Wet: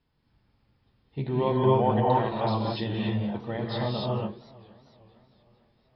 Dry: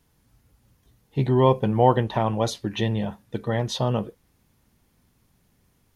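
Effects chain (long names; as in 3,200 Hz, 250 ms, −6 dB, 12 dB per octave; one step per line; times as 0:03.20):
Chebyshev low-pass filter 5,200 Hz, order 10
reverb whose tail is shaped and stops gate 310 ms rising, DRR −4 dB
feedback echo with a swinging delay time 457 ms, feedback 50%, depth 159 cents, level −22 dB
level −8 dB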